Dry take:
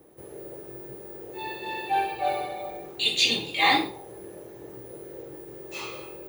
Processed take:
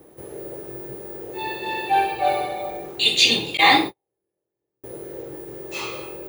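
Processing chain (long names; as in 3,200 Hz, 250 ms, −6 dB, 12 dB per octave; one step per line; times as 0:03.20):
0:03.57–0:04.84: noise gate −30 dBFS, range −46 dB
level +6 dB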